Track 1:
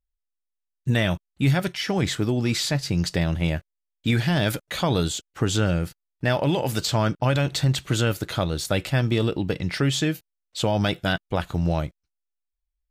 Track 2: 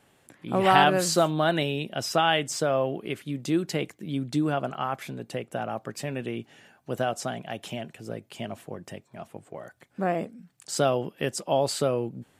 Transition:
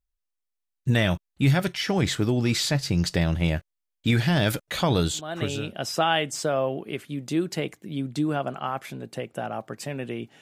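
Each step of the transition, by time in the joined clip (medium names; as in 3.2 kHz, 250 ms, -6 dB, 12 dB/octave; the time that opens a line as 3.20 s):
track 1
5.42 s: go over to track 2 from 1.59 s, crossfade 0.64 s linear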